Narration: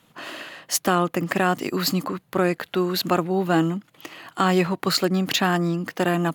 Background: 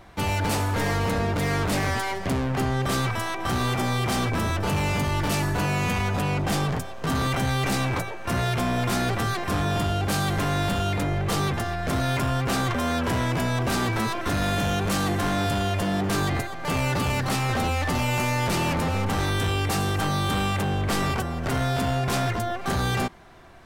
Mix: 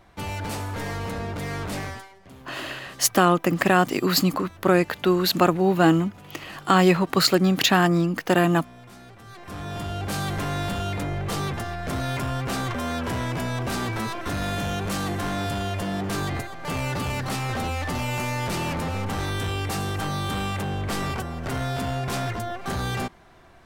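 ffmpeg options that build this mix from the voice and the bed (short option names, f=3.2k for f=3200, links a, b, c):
-filter_complex "[0:a]adelay=2300,volume=2.5dB[a];[1:a]volume=12.5dB,afade=t=out:st=1.8:d=0.29:silence=0.16788,afade=t=in:st=9.23:d=0.98:silence=0.11885[b];[a][b]amix=inputs=2:normalize=0"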